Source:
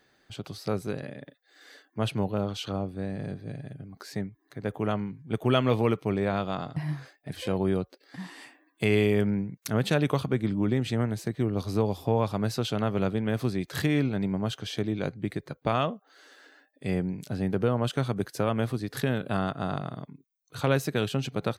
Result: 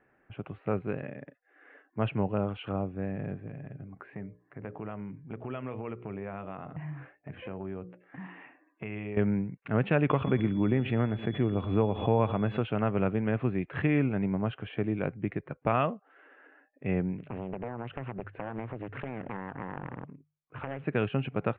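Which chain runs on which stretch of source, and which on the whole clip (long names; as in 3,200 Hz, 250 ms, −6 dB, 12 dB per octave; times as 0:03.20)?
0:03.47–0:09.17: mains-hum notches 60/120/180/240/300/360/420/480/540/600 Hz + downward compressor 3 to 1, threshold −36 dBFS
0:10.09–0:12.61: bucket-brigade delay 114 ms, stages 2,048, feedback 31%, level −19 dB + steady tone 3,400 Hz −41 dBFS + background raised ahead of every attack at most 79 dB per second
0:17.18–0:20.84: mains-hum notches 50/100/150 Hz + downward compressor 12 to 1, threshold −30 dBFS + highs frequency-modulated by the lows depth 0.96 ms
whole clip: low-pass that shuts in the quiet parts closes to 1,900 Hz, open at −23 dBFS; elliptic low-pass filter 2,700 Hz, stop band 50 dB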